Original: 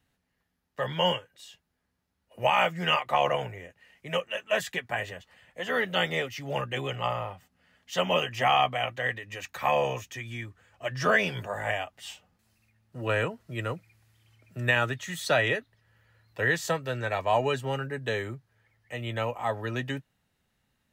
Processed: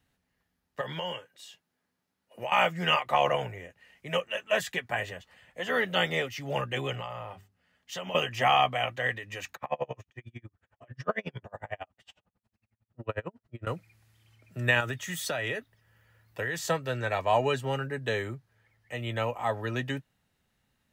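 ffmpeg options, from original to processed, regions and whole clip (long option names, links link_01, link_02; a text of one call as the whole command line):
ffmpeg -i in.wav -filter_complex "[0:a]asettb=1/sr,asplit=3[link_01][link_02][link_03];[link_01]atrim=end=0.814[link_04];[link_02]atrim=start=0.81:end=2.52,asetpts=PTS-STARTPTS,afade=type=in:duration=0.004:curve=qsin,afade=type=out:start_time=1.706:duration=0.004:curve=qsin,highpass=160,acompressor=threshold=-32dB:ratio=4:attack=3.2:release=140:knee=1:detection=peak[link_05];[link_03]atrim=start=2.516[link_06];[link_04][link_05]acrossfade=duration=0.004:curve1=hsin:curve2=qsin[link_07];[link_07][link_06]acrossfade=duration=0.004:curve1=qsin:curve2=hsin,asettb=1/sr,asplit=3[link_08][link_09][link_10];[link_08]atrim=end=7.004[link_11];[link_09]atrim=start=7:end=8.15,asetpts=PTS-STARTPTS,afade=type=in:duration=0.004:curve=qsin,afade=type=out:start_time=1.146:duration=0.004:curve=qsin,agate=range=-6dB:threshold=-56dB:ratio=16:release=100:detection=peak,bandreject=frequency=50:width_type=h:width=6,bandreject=frequency=100:width_type=h:width=6,bandreject=frequency=150:width_type=h:width=6,bandreject=frequency=200:width_type=h:width=6,bandreject=frequency=250:width_type=h:width=6,bandreject=frequency=300:width_type=h:width=6,bandreject=frequency=350:width_type=h:width=6,bandreject=frequency=400:width_type=h:width=6,acompressor=threshold=-34dB:ratio=5:attack=3.2:release=140:knee=1:detection=peak[link_12];[link_10]atrim=start=8.146[link_13];[link_11][link_12]acrossfade=duration=0.004:curve1=hsin:curve2=qsin[link_14];[link_14][link_13]acrossfade=duration=0.004:curve1=qsin:curve2=hsin,asettb=1/sr,asplit=3[link_15][link_16][link_17];[link_15]atrim=end=9.554[link_18];[link_16]atrim=start=9.55:end=13.67,asetpts=PTS-STARTPTS,afade=type=in:duration=0.004:curve=qsin,afade=type=out:start_time=4.116:duration=0.004:curve=qsin,lowpass=frequency=1400:poles=1,aeval=exprs='val(0)*pow(10,-38*(0.5-0.5*cos(2*PI*11*n/s))/20)':channel_layout=same[link_19];[link_17]atrim=start=13.666[link_20];[link_18][link_19]acrossfade=duration=0.004:curve1=hsin:curve2=qsin[link_21];[link_21][link_20]acrossfade=duration=0.004:curve1=qsin:curve2=hsin,asettb=1/sr,asplit=3[link_22][link_23][link_24];[link_22]atrim=end=14.804[link_25];[link_23]atrim=start=14.8:end=16.59,asetpts=PTS-STARTPTS,afade=type=in:duration=0.004:curve=qsin,afade=type=out:start_time=1.786:duration=0.004:curve=qsin,highshelf=frequency=12000:gain=9,bandreject=frequency=4100:width=10,acompressor=threshold=-27dB:ratio=10:attack=3.2:release=140:knee=1:detection=peak[link_26];[link_24]atrim=start=16.586[link_27];[link_25][link_26]acrossfade=duration=0.004:curve1=hsin:curve2=qsin[link_28];[link_28][link_27]acrossfade=duration=0.004:curve1=qsin:curve2=hsin" out.wav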